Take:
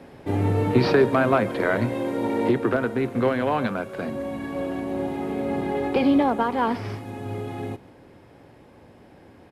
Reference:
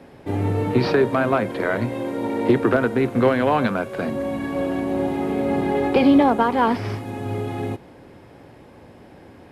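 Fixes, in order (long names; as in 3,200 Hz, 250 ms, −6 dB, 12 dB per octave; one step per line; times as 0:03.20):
echo removal 139 ms −21.5 dB
level correction +4.5 dB, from 0:02.49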